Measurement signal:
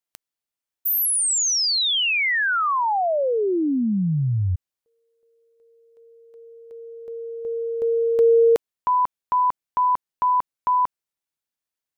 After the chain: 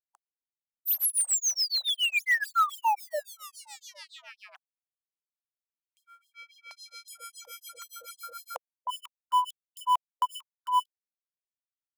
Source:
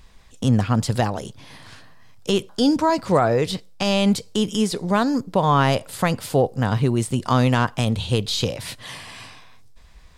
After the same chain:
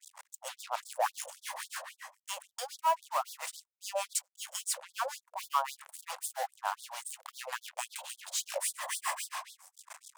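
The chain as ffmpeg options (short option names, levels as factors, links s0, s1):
-filter_complex "[0:a]equalizer=f=125:t=o:w=1:g=-12,equalizer=f=1000:t=o:w=1:g=7,equalizer=f=4000:t=o:w=1:g=-12,equalizer=f=8000:t=o:w=1:g=9,areverse,acompressor=threshold=0.0355:ratio=5:attack=0.32:release=309:knee=1:detection=rms,areverse,asoftclip=type=tanh:threshold=0.0531,asplit=2[s0][s1];[s1]adynamicsmooth=sensitivity=4.5:basefreq=930,volume=0.794[s2];[s0][s2]amix=inputs=2:normalize=0,acrusher=bits=6:mix=0:aa=0.5,acrossover=split=750[s3][s4];[s3]aeval=exprs='val(0)*(1-1/2+1/2*cos(2*PI*7.1*n/s))':c=same[s5];[s4]aeval=exprs='val(0)*(1-1/2-1/2*cos(2*PI*7.1*n/s))':c=same[s6];[s5][s6]amix=inputs=2:normalize=0,afftfilt=real='re*gte(b*sr/1024,490*pow(3400/490,0.5+0.5*sin(2*PI*3.7*pts/sr)))':imag='im*gte(b*sr/1024,490*pow(3400/490,0.5+0.5*sin(2*PI*3.7*pts/sr)))':win_size=1024:overlap=0.75,volume=2.51"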